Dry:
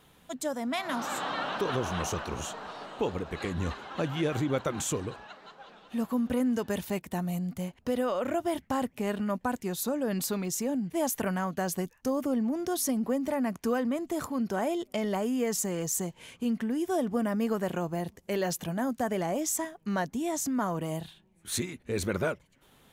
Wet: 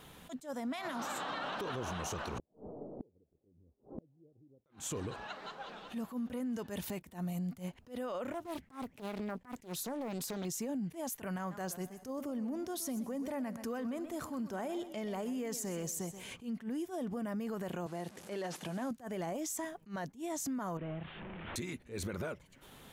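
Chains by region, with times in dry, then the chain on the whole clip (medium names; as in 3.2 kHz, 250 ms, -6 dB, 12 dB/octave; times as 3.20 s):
2.38–4.66 s: inverse Chebyshev low-pass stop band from 2.2 kHz, stop band 70 dB + peaking EQ 190 Hz -4 dB 0.25 oct + inverted gate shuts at -33 dBFS, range -38 dB
8.32–10.45 s: compression 8:1, threshold -33 dBFS + loudspeaker Doppler distortion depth 0.68 ms
11.38–16.31 s: feedback comb 82 Hz, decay 1.7 s, harmonics odd, mix 40% + modulated delay 125 ms, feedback 31%, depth 131 cents, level -15 dB
17.86–18.91 s: one-bit delta coder 64 kbps, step -47 dBFS + Bessel high-pass 210 Hz
20.77–21.56 s: one-bit delta coder 16 kbps, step -44.5 dBFS + compression 2:1, threshold -42 dBFS
whole clip: peak limiter -29 dBFS; compression 2:1, threshold -46 dBFS; attacks held to a fixed rise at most 230 dB/s; trim +5 dB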